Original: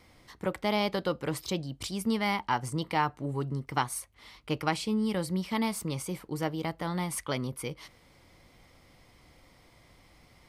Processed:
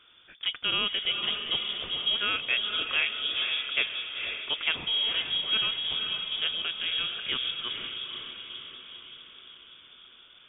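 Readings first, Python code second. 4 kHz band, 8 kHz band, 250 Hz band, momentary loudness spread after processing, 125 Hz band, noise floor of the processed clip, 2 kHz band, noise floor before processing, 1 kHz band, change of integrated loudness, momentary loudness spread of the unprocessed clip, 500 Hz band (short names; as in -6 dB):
+16.0 dB, under -40 dB, -17.5 dB, 15 LU, -18.5 dB, -55 dBFS, +7.0 dB, -60 dBFS, -8.5 dB, +4.5 dB, 8 LU, -11.0 dB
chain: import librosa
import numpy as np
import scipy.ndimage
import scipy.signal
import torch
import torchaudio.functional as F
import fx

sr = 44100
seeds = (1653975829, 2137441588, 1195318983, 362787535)

y = fx.echo_diffused(x, sr, ms=496, feedback_pct=57, wet_db=-5)
y = fx.freq_invert(y, sr, carrier_hz=3500)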